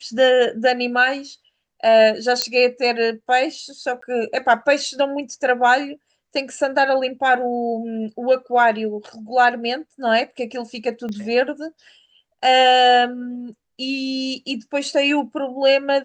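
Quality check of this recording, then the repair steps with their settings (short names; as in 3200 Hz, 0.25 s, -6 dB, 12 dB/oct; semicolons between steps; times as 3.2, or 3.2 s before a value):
2.42 pop -4 dBFS
4.01–4.02 gap 14 ms
11.09 pop -20 dBFS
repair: de-click; interpolate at 4.01, 14 ms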